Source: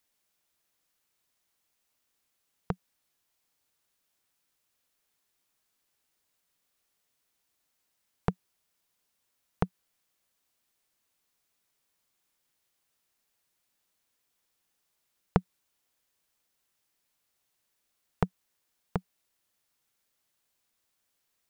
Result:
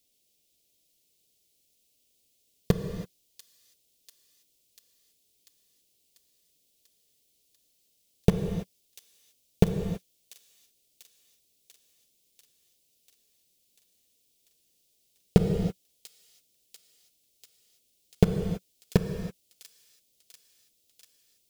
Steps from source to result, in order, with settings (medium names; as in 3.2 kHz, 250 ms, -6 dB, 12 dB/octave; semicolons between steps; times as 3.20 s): Chebyshev band-stop 500–3200 Hz, order 2; in parallel at -3.5 dB: bit crusher 5-bit; on the sum: feedback echo behind a high-pass 692 ms, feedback 69%, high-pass 5 kHz, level -7 dB; gated-style reverb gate 350 ms flat, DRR 6.5 dB; loudness maximiser +8 dB; trim -1 dB